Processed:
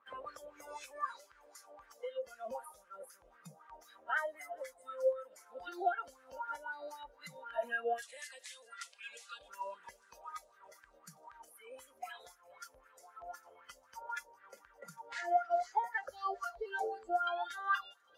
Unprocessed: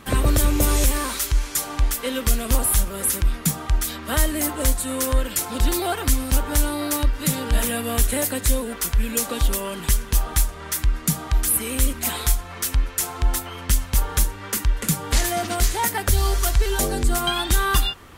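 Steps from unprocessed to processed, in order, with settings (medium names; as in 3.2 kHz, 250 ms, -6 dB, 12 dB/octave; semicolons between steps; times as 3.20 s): 8.02–9.39 s: frequency weighting ITU-R 468; spectral noise reduction 21 dB; peaking EQ 520 Hz +12 dB 0.43 oct; compression 2:1, threshold -33 dBFS, peak gain reduction 13 dB; wah-wah 3.9 Hz 580–1600 Hz, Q 5.2; feedback echo behind a high-pass 403 ms, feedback 65%, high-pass 4 kHz, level -19 dB; trim +5.5 dB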